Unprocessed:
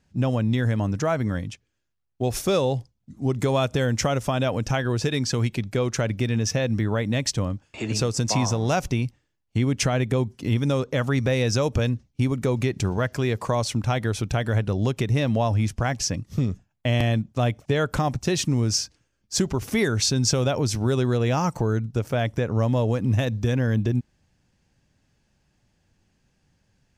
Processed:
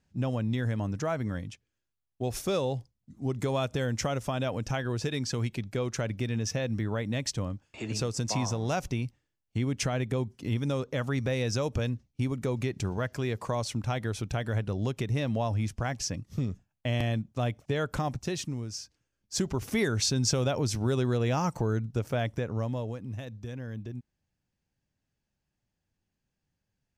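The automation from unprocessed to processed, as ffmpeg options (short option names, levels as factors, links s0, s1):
-af "volume=1.58,afade=t=out:st=18.11:d=0.61:silence=0.354813,afade=t=in:st=18.72:d=0.87:silence=0.281838,afade=t=out:st=22.13:d=0.93:silence=0.281838"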